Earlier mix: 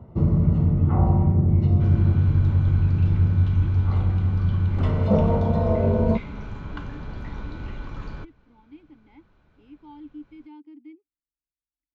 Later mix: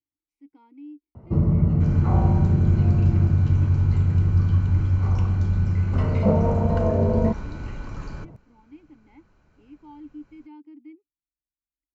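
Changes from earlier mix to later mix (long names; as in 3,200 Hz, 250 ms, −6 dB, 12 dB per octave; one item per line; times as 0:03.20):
first sound: entry +1.15 s
second sound: remove low-pass filter 4,000 Hz 12 dB per octave
master: add parametric band 3,500 Hz −12.5 dB 0.21 octaves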